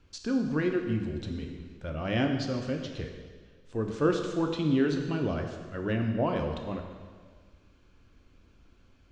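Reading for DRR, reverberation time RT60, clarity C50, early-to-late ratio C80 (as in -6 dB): 3.0 dB, 1.6 s, 5.5 dB, 6.5 dB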